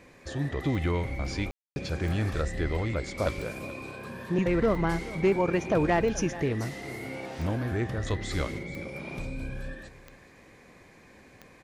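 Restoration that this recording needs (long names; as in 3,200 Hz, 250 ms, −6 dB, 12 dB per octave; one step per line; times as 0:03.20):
clipped peaks rebuilt −16.5 dBFS
click removal
ambience match 0:01.51–0:01.76
echo removal 428 ms −17 dB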